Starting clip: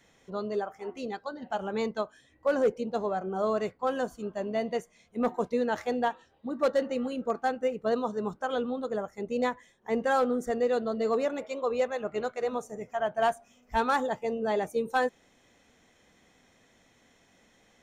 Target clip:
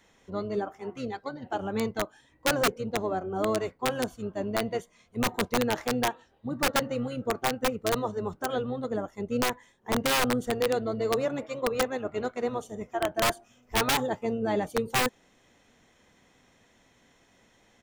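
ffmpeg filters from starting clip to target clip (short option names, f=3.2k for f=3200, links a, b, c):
-filter_complex "[0:a]asplit=2[a][b];[b]asetrate=22050,aresample=44100,atempo=2,volume=-7dB[c];[a][c]amix=inputs=2:normalize=0,aeval=exprs='(mod(7.94*val(0)+1,2)-1)/7.94':c=same"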